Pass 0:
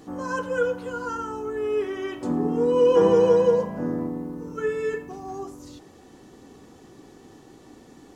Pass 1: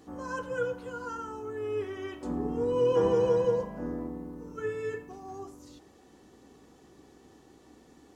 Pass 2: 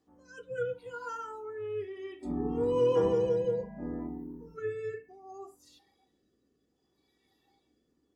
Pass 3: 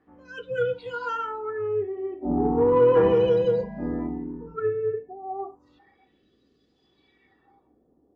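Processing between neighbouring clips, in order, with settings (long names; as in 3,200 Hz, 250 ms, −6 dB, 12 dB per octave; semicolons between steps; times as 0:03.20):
sub-octave generator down 2 octaves, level −4 dB; low-shelf EQ 95 Hz −10 dB; level −7 dB
rotating-speaker cabinet horn 0.65 Hz; noise reduction from a noise print of the clip's start 17 dB
auto-filter low-pass sine 0.34 Hz 700–4,200 Hz; in parallel at −5 dB: soft clipping −24.5 dBFS, distortion −13 dB; on the sum: level +4.5 dB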